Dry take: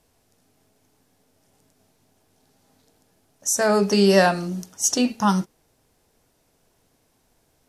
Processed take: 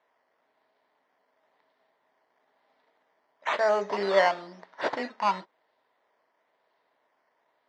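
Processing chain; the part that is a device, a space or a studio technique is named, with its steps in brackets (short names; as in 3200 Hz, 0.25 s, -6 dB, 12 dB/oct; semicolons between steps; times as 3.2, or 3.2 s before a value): circuit-bent sampling toy (decimation with a swept rate 9×, swing 60% 1 Hz; speaker cabinet 440–4800 Hz, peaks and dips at 620 Hz +7 dB, 970 Hz +9 dB, 1900 Hz +7 dB, 2600 Hz -5 dB); gain -8 dB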